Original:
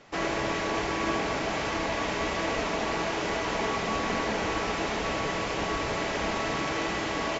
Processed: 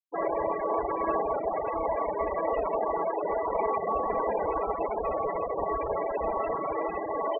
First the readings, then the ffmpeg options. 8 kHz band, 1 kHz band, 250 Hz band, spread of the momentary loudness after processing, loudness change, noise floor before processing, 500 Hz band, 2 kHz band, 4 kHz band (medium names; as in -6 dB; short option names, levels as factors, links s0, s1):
no reading, +2.0 dB, -6.0 dB, 2 LU, -0.5 dB, -31 dBFS, +3.5 dB, -13.0 dB, under -25 dB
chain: -af "afftfilt=real='re*gte(hypot(re,im),0.0794)':imag='im*gte(hypot(re,im),0.0794)':win_size=1024:overlap=0.75,equalizer=f=125:t=o:w=1:g=-9,equalizer=f=250:t=o:w=1:g=-9,equalizer=f=500:t=o:w=1:g=7,equalizer=f=1000:t=o:w=1:g=5,equalizer=f=2000:t=o:w=1:g=-7,equalizer=f=4000:t=o:w=1:g=8"